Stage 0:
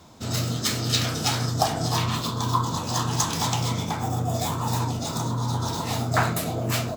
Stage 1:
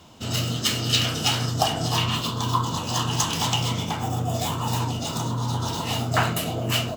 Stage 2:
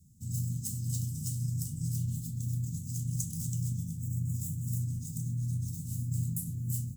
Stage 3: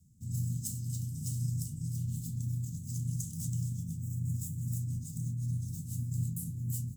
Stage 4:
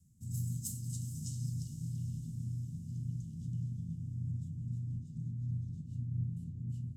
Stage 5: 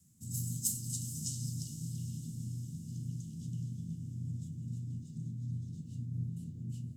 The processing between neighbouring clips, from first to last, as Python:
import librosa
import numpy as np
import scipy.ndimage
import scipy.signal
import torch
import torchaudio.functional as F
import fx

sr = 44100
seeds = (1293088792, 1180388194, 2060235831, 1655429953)

y1 = fx.peak_eq(x, sr, hz=2900.0, db=14.5, octaves=0.2)
y2 = scipy.signal.sosfilt(scipy.signal.ellip(3, 1.0, 70, [170.0, 8100.0], 'bandstop', fs=sr, output='sos'), y1)
y2 = y2 * librosa.db_to_amplitude(-4.5)
y3 = fx.rotary_switch(y2, sr, hz=1.2, then_hz=6.0, switch_at_s=2.18)
y4 = fx.spec_erase(y3, sr, start_s=6.05, length_s=0.27, low_hz=1100.0, high_hz=10000.0)
y4 = fx.filter_sweep_lowpass(y4, sr, from_hz=13000.0, to_hz=2100.0, start_s=0.71, end_s=2.25, q=1.1)
y4 = fx.echo_diffused(y4, sr, ms=463, feedback_pct=60, wet_db=-12.0)
y4 = y4 * librosa.db_to_amplitude(-3.0)
y5 = fx.highpass(y4, sr, hz=380.0, slope=6)
y5 = y5 * librosa.db_to_amplitude(8.5)